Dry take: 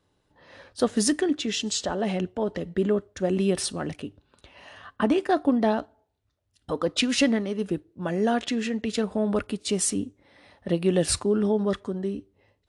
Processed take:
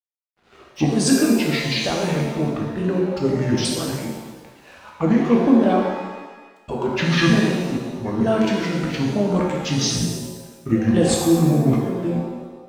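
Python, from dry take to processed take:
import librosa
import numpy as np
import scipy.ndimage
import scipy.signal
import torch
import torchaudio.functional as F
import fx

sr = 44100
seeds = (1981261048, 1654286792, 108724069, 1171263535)

y = fx.pitch_ramps(x, sr, semitones=-9.5, every_ms=912)
y = np.sign(y) * np.maximum(np.abs(y) - 10.0 ** (-55.0 / 20.0), 0.0)
y = fx.rev_shimmer(y, sr, seeds[0], rt60_s=1.2, semitones=7, shimmer_db=-8, drr_db=-1.5)
y = F.gain(torch.from_numpy(y), 2.5).numpy()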